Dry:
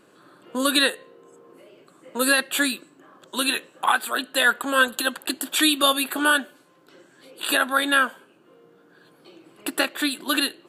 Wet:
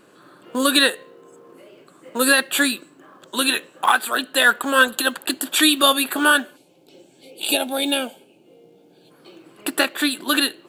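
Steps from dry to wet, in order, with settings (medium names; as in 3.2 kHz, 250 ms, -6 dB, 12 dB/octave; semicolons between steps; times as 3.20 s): time-frequency box 6.56–9.11 s, 910–2100 Hz -18 dB; in parallel at -6 dB: short-mantissa float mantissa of 2-bit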